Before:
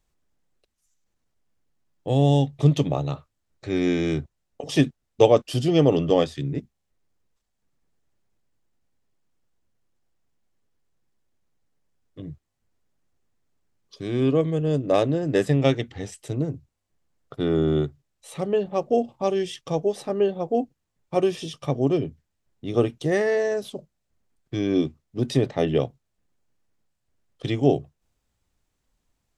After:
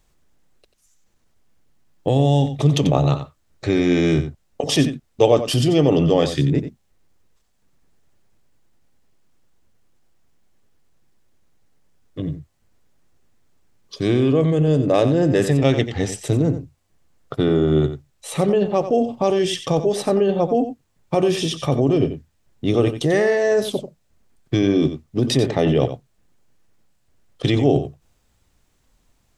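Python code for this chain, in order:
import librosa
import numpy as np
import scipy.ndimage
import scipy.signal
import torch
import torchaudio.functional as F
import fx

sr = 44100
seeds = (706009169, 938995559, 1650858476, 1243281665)

p1 = fx.over_compress(x, sr, threshold_db=-27.0, ratio=-1.0)
p2 = x + (p1 * 10.0 ** (3.0 / 20.0))
y = p2 + 10.0 ** (-11.0 / 20.0) * np.pad(p2, (int(90 * sr / 1000.0), 0))[:len(p2)]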